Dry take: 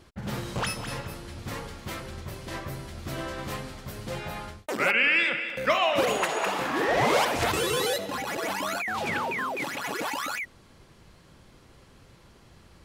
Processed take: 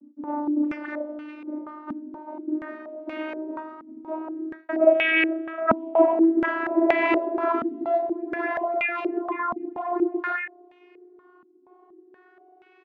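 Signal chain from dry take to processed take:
vocoder with a gliding carrier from D4, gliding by +4 semitones
double-tracking delay 34 ms −7 dB
low-pass on a step sequencer 4.2 Hz 240–2,400 Hz

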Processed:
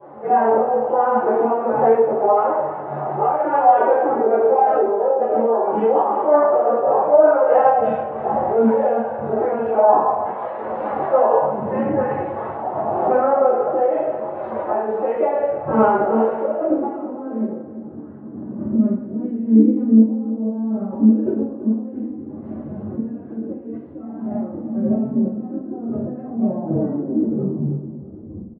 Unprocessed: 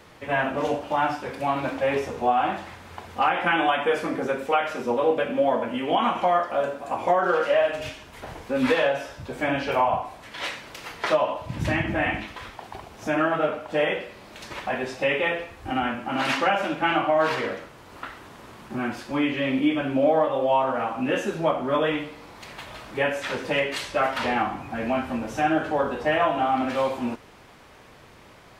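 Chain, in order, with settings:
turntable brake at the end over 2.58 s
camcorder AGC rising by 14 dB per second
low-shelf EQ 150 Hz −8 dB
downward compressor 6 to 1, threshold −26 dBFS, peak gain reduction 10 dB
brickwall limiter −23 dBFS, peak gain reduction 10.5 dB
low-pass filter sweep 770 Hz → 240 Hz, 0:15.91–0:17.58
phase-vocoder pitch shift with formants kept +9 semitones
sample-and-hold tremolo
repeating echo 331 ms, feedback 38%, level −13.5 dB
convolution reverb RT60 0.55 s, pre-delay 3 ms, DRR −18 dB
level −8.5 dB

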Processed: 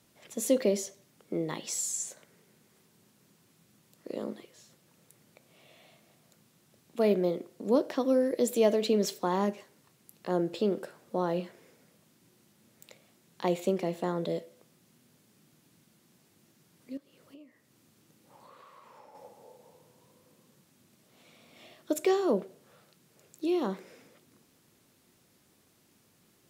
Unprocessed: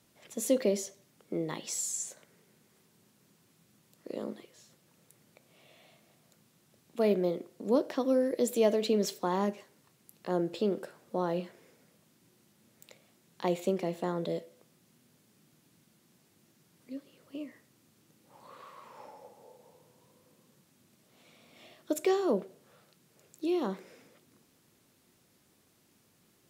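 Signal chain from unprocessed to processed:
0:16.97–0:19.15: downward compressor 4 to 1, threshold −54 dBFS, peak gain reduction 15 dB
level +1.5 dB

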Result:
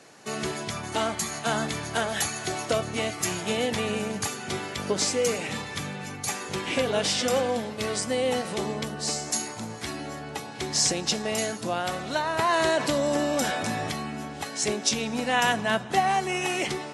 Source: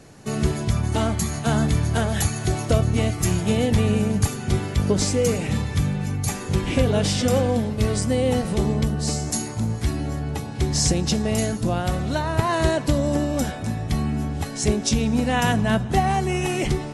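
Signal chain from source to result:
meter weighting curve A
0:12.39–0:13.91: envelope flattener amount 50%

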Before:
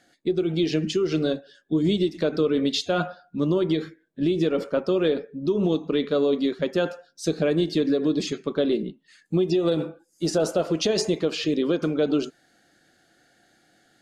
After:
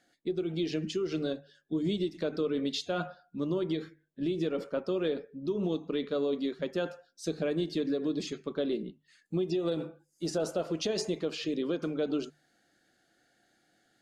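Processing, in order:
mains-hum notches 50/100/150 Hz
level −8.5 dB

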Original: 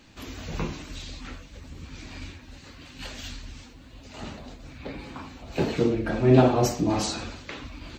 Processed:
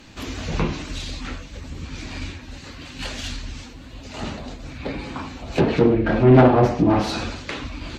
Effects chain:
phase distortion by the signal itself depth 0.28 ms
treble cut that deepens with the level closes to 2,300 Hz, closed at −21 dBFS
soft clipping −12.5 dBFS, distortion −15 dB
level +8 dB

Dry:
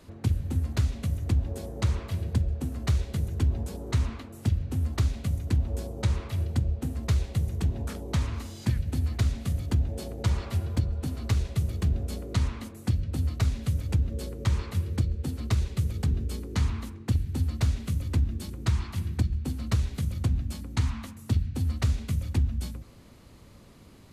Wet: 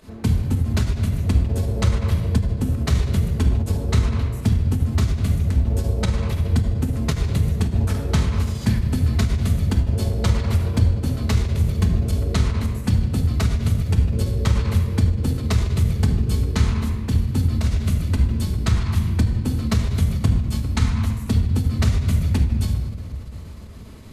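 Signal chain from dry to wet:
fake sidechain pumping 109 BPM, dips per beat 1, −12 dB, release 71 ms
rectangular room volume 1,900 cubic metres, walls mixed, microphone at 1.5 metres
every ending faded ahead of time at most 140 dB per second
level +7 dB

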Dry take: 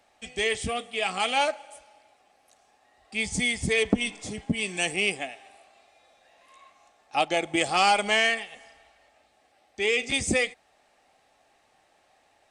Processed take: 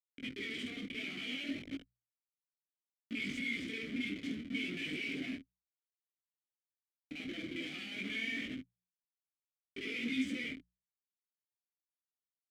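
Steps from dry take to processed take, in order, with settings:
reversed piece by piece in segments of 45 ms
leveller curve on the samples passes 2
comparator with hysteresis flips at −35 dBFS
formant filter i
mains-hum notches 60/120/180 Hz
micro pitch shift up and down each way 21 cents
level +1 dB

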